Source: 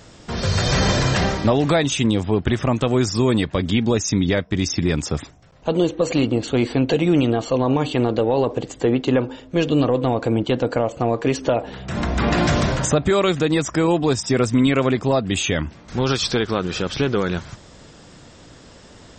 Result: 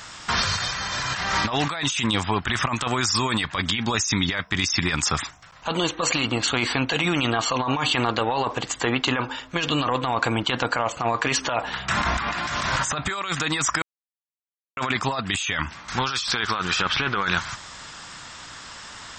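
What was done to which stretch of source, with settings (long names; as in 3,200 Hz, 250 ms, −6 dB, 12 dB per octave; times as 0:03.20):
0:13.82–0:14.77: silence
0:16.81–0:17.23: low-pass filter 3,400 Hz
whole clip: low shelf with overshoot 730 Hz −13.5 dB, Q 1.5; compressor whose output falls as the input rises −30 dBFS, ratio −1; level +6 dB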